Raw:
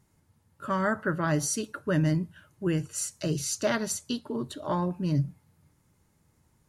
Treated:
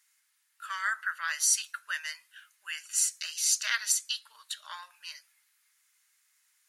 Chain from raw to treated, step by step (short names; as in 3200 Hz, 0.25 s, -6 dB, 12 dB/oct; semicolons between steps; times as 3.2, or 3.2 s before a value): inverse Chebyshev high-pass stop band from 360 Hz, stop band 70 dB; gain +6 dB